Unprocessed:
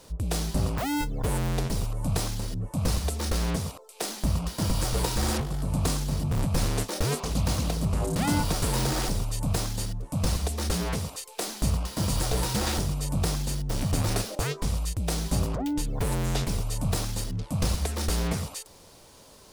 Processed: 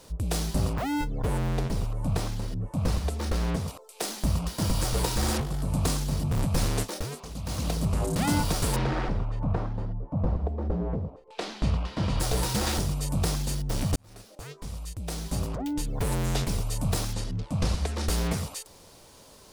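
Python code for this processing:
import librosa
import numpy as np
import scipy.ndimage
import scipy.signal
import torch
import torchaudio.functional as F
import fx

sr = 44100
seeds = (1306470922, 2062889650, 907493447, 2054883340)

y = fx.high_shelf(x, sr, hz=4100.0, db=-9.5, at=(0.73, 3.68))
y = fx.filter_lfo_lowpass(y, sr, shape='saw_down', hz=fx.line((8.75, 0.59), (12.19, 0.1)), low_hz=520.0, high_hz=3600.0, q=1.0, at=(8.75, 12.19), fade=0.02)
y = fx.air_absorb(y, sr, metres=56.0, at=(17.13, 18.08))
y = fx.edit(y, sr, fx.fade_down_up(start_s=6.81, length_s=0.91, db=-10.0, fade_s=0.29),
    fx.fade_in_span(start_s=13.96, length_s=2.19), tone=tone)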